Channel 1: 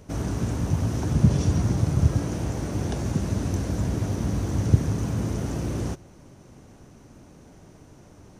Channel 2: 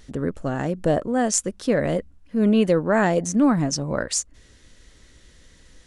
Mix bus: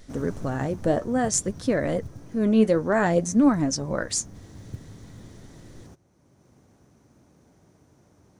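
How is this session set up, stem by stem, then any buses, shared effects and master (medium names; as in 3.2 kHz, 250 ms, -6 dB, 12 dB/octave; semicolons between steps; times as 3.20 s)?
-8.5 dB, 0.00 s, no send, high-pass 65 Hz; short-mantissa float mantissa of 4-bit; auto duck -10 dB, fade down 1.25 s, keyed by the second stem
+2.0 dB, 0.00 s, no send, flange 0.56 Hz, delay 2.8 ms, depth 6.7 ms, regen +61%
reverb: none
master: peaking EQ 2.8 kHz -4.5 dB 0.31 oct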